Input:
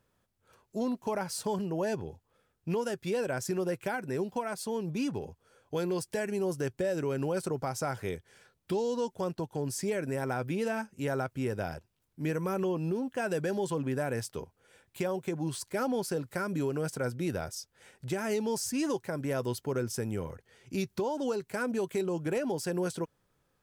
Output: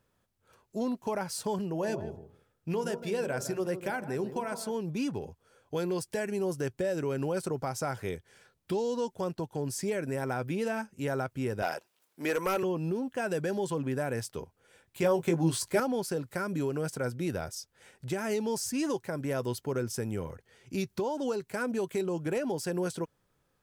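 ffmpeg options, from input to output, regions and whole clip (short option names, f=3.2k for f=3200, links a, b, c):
-filter_complex "[0:a]asettb=1/sr,asplit=3[a][b][c];[a]atrim=end=1.724[d];[b]atrim=start=1.72:end=4.75,asetpts=PTS-STARTPTS,afade=t=in:d=0.004:c=qsin,afade=t=out:st=3.026:d=0.004:c=qsin,bandreject=f=60.59:t=h:w=4,bandreject=f=121.18:t=h:w=4,bandreject=f=181.77:t=h:w=4,bandreject=f=242.36:t=h:w=4,bandreject=f=302.95:t=h:w=4,bandreject=f=363.54:t=h:w=4,bandreject=f=424.13:t=h:w=4,bandreject=f=484.72:t=h:w=4,bandreject=f=545.31:t=h:w=4,bandreject=f=605.9:t=h:w=4,bandreject=f=666.49:t=h:w=4,bandreject=f=727.08:t=h:w=4,bandreject=f=787.67:t=h:w=4,bandreject=f=848.26:t=h:w=4,bandreject=f=908.85:t=h:w=4,bandreject=f=969.44:t=h:w=4,bandreject=f=1.03003k:t=h:w=4,bandreject=f=1.09062k:t=h:w=4,bandreject=f=1.15121k:t=h:w=4,bandreject=f=1.2118k:t=h:w=4,bandreject=f=1.27239k:t=h:w=4,bandreject=f=1.33298k:t=h:w=4,bandreject=f=1.39357k:t=h:w=4,asplit=2[e][f];[f]adelay=158,lowpass=f=860:p=1,volume=-9.5dB,asplit=2[g][h];[h]adelay=158,lowpass=f=860:p=1,volume=0.16[i];[e][g][i]amix=inputs=3:normalize=0,atrim=end_sample=133623[j];[c]atrim=start=4.746[k];[d][j]acrossfade=d=0.004:c1=hsin:c2=qsin[l];[l][k]acrossfade=d=0.004:c1=qsin:c2=hsin,asettb=1/sr,asplit=3[m][n][o];[m]atrim=end=11.624[p];[n]atrim=start=11.62:end=12.63,asetpts=PTS-STARTPTS,afade=t=in:d=0.004:c=qsin,afade=t=out:st=1.006:d=0.004:c=qsin,highpass=480,aeval=exprs='0.075*sin(PI/2*1.78*val(0)/0.075)':c=same[q];[o]atrim=start=12.626[r];[p][q]acrossfade=d=0.004:c1=hsin:c2=qsin[s];[s][r]acrossfade=d=0.004:c1=qsin:c2=hsin,asettb=1/sr,asplit=3[t][u][v];[t]atrim=end=15.024[w];[u]atrim=start=15.02:end=15.8,asetpts=PTS-STARTPTS,afade=t=in:d=0.004:c=qsin,afade=t=out:st=0.776:d=0.004:c=qsin,acontrast=31,asplit=2[x][y];[y]adelay=18,volume=-7dB[z];[x][z]amix=inputs=2:normalize=0,atrim=end_sample=34398[aa];[v]atrim=start=15.796[ab];[w][aa]acrossfade=d=0.004:c1=hsin:c2=qsin[ac];[ac][ab]acrossfade=d=0.004:c1=qsin:c2=hsin"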